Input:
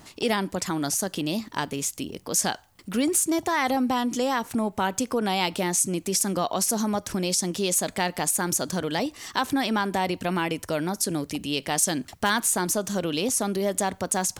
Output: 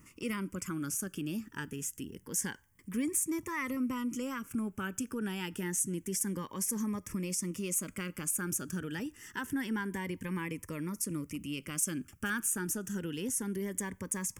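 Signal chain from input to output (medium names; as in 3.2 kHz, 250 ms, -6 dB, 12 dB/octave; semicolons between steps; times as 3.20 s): static phaser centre 1.7 kHz, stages 4; Shepard-style phaser rising 0.27 Hz; trim -6 dB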